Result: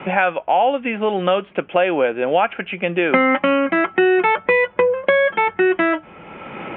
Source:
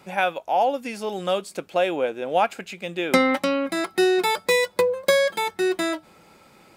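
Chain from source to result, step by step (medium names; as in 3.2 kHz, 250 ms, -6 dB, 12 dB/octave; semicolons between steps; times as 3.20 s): steep low-pass 3.2 kHz 96 dB/octave; dynamic bell 1.6 kHz, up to +4 dB, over -38 dBFS, Q 1.2; in parallel at +1 dB: peak limiter -14 dBFS, peak gain reduction 8.5 dB; on the sum: three bands compressed up and down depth 70%; trim -1 dB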